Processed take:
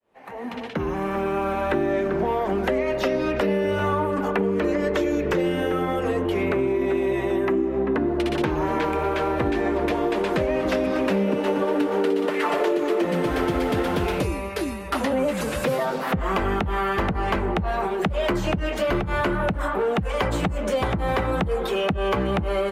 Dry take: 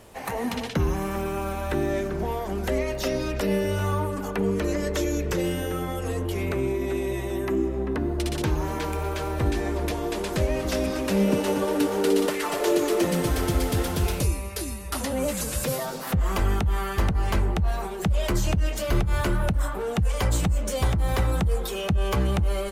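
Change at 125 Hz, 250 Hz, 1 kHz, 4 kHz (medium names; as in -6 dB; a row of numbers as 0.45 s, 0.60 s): -3.5 dB, +3.0 dB, +5.5 dB, 0.0 dB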